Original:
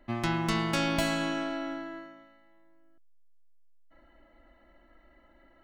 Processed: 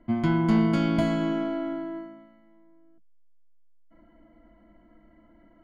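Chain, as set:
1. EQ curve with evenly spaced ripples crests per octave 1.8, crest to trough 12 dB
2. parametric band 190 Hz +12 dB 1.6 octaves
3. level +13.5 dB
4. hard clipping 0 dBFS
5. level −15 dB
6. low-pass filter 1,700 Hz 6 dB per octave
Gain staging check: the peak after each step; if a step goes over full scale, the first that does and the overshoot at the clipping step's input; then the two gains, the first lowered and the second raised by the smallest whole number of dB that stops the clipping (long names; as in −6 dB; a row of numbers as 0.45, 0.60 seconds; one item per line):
−12.0, −7.5, +6.0, 0.0, −15.0, −15.0 dBFS
step 3, 6.0 dB
step 3 +7.5 dB, step 5 −9 dB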